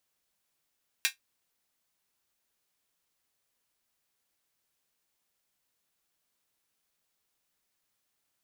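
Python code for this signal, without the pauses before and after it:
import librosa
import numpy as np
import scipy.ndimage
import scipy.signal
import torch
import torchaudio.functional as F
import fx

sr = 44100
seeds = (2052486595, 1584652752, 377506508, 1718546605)

y = fx.drum_hat(sr, length_s=0.24, from_hz=2000.0, decay_s=0.13)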